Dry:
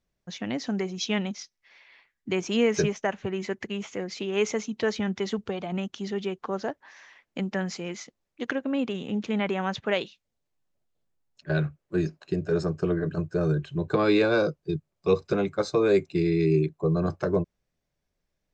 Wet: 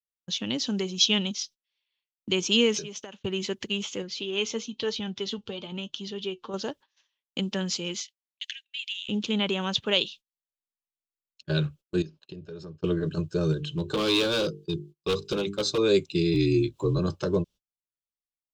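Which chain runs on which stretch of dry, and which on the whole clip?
2.77–3.20 s: high-pass 140 Hz + compression 5:1, threshold -36 dBFS
4.02–6.54 s: low-pass 5.7 kHz + flange 1 Hz, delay 6 ms, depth 3 ms, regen +60%
8.01–9.09 s: steep high-pass 1.8 kHz 72 dB/octave + treble shelf 5.3 kHz -5.5 dB
12.02–12.84 s: compression 3:1, threshold -41 dBFS + distance through air 130 m
13.52–15.78 s: hum notches 50/100/150/200/250/300/350/400/450 Hz + hard clipper -21.5 dBFS
16.34–16.99 s: upward compressor, threshold -29 dBFS + frequency shift -31 Hz + doubling 20 ms -9 dB
whole clip: resonant high shelf 2.5 kHz +7 dB, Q 3; gate -44 dBFS, range -31 dB; peaking EQ 700 Hz -14 dB 0.2 oct

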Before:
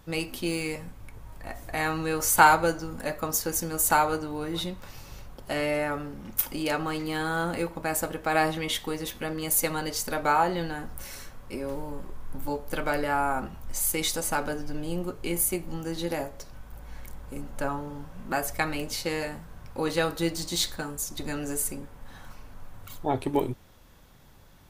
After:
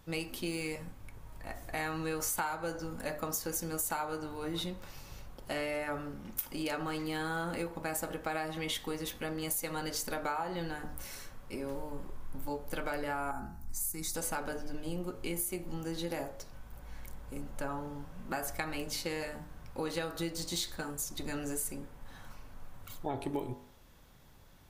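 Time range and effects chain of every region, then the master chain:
13.31–14.15 s: high-order bell 1.4 kHz -8 dB + static phaser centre 1.3 kHz, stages 4
whole clip: de-hum 49.82 Hz, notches 38; compression 12:1, threshold -27 dBFS; trim -4 dB

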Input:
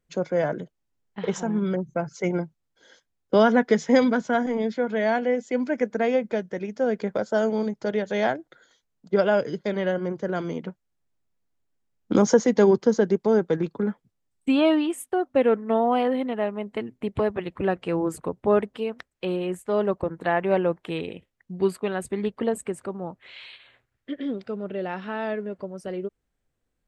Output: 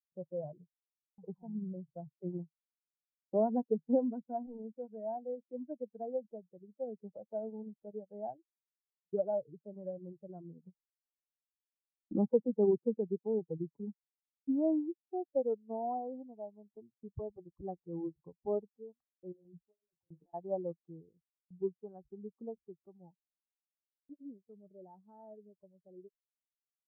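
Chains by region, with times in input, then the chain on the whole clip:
19.32–20.34 s: compressor with a negative ratio -33 dBFS + detune thickener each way 25 cents
whole clip: expander on every frequency bin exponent 2; gate with hold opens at -49 dBFS; steep low-pass 790 Hz 36 dB/octave; trim -8 dB

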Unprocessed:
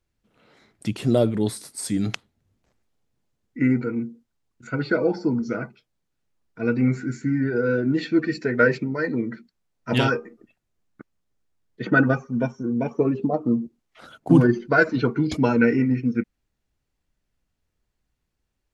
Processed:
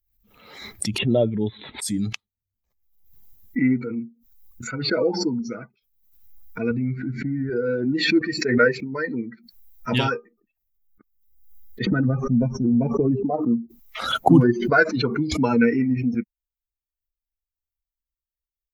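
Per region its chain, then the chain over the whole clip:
0.98–1.82 s: steep low-pass 3.7 kHz 96 dB/octave + band-stop 1.2 kHz, Q 8.2
6.71–7.50 s: low-pass 3.7 kHz 24 dB/octave + bass shelf 180 Hz +9 dB + compression 4:1, threshold -19 dBFS
11.86–13.24 s: tilt EQ -3.5 dB/octave + compression 12:1, threshold -14 dBFS
whole clip: expander on every frequency bin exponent 1.5; swell ahead of each attack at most 61 dB/s; trim +2 dB

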